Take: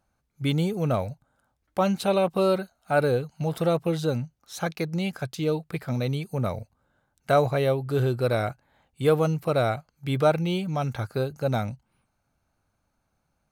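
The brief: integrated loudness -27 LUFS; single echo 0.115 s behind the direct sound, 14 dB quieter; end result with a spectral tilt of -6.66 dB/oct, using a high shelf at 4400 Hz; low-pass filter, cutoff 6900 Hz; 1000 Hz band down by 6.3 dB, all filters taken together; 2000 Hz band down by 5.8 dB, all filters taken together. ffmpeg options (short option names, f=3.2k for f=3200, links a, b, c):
-af "lowpass=6.9k,equalizer=f=1k:t=o:g=-9,equalizer=f=2k:t=o:g=-5.5,highshelf=f=4.4k:g=5.5,aecho=1:1:115:0.2,volume=0.5dB"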